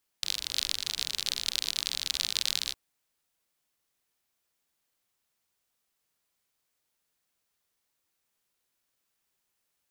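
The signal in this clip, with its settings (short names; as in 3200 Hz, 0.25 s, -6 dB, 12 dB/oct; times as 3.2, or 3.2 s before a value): rain from filtered ticks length 2.51 s, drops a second 50, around 4000 Hz, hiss -20.5 dB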